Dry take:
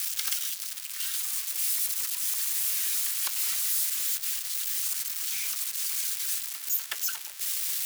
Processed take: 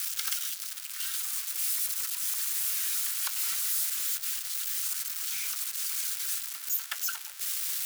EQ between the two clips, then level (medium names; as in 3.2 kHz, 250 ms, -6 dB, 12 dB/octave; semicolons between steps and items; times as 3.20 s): high-pass 600 Hz 24 dB/octave; peaking EQ 1.4 kHz +5.5 dB 0.37 oct; -2.0 dB